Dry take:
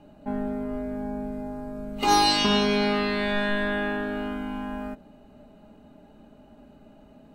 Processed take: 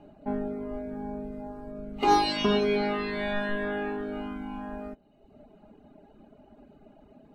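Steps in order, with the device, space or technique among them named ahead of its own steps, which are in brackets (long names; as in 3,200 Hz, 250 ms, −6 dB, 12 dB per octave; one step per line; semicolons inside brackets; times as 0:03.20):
inside a helmet (high-shelf EQ 4,800 Hz −9.5 dB; hollow resonant body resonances 390/700/2,200 Hz, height 6 dB, ringing for 25 ms)
reverb reduction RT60 1 s
0:01.71–0:02.44: high-shelf EQ 4,800 Hz −5 dB
level −1.5 dB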